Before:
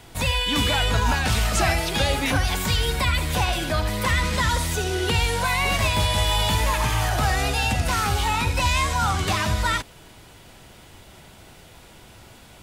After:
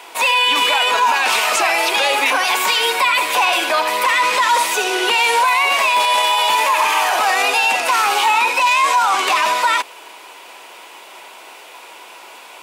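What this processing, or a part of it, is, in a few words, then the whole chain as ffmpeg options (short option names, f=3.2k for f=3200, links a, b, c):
laptop speaker: -af "highpass=f=380:w=0.5412,highpass=f=380:w=1.3066,equalizer=f=1k:t=o:w=0.48:g=10,equalizer=f=2.5k:t=o:w=0.45:g=8,alimiter=limit=-14.5dB:level=0:latency=1:release=30,volume=7.5dB"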